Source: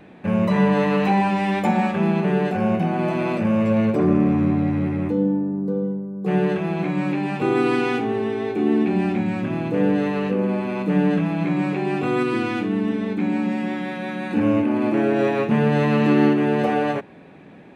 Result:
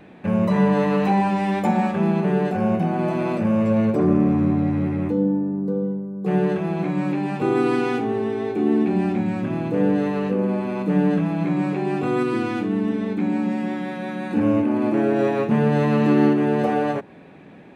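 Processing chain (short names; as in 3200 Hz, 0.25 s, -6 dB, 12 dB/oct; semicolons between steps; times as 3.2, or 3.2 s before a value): dynamic EQ 2600 Hz, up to -5 dB, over -40 dBFS, Q 0.98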